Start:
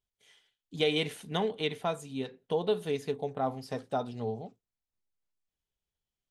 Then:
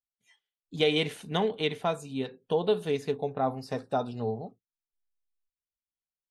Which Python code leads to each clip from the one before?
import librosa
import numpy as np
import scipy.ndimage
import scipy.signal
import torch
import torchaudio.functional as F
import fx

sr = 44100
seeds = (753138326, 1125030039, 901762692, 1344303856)

y = fx.noise_reduce_blind(x, sr, reduce_db=20)
y = fx.high_shelf(y, sr, hz=9000.0, db=-6.5)
y = y * 10.0 ** (3.0 / 20.0)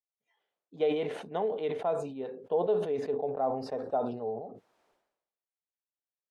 y = fx.bandpass_q(x, sr, hz=590.0, q=1.5)
y = fx.sustainer(y, sr, db_per_s=66.0)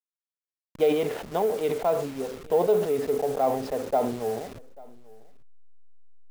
y = fx.delta_hold(x, sr, step_db=-42.5)
y = y + 10.0 ** (-23.5 / 20.0) * np.pad(y, (int(840 * sr / 1000.0), 0))[:len(y)]
y = y * 10.0 ** (6.0 / 20.0)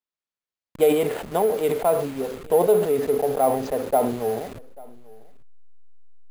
y = np.repeat(scipy.signal.resample_poly(x, 1, 4), 4)[:len(x)]
y = y * 10.0 ** (4.0 / 20.0)